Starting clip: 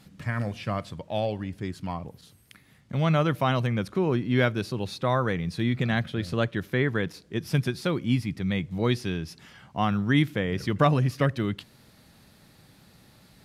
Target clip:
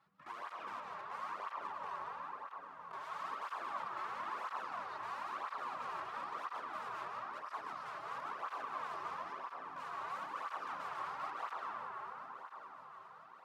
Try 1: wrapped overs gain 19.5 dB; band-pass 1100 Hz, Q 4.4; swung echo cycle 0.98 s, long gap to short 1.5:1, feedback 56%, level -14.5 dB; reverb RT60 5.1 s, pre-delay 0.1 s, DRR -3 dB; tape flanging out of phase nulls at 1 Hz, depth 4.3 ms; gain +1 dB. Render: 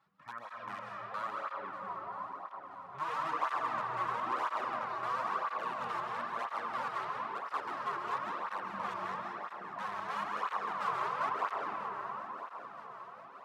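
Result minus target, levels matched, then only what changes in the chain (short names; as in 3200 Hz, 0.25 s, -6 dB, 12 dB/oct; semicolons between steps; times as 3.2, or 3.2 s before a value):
wrapped overs: distortion -20 dB
change: wrapped overs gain 29 dB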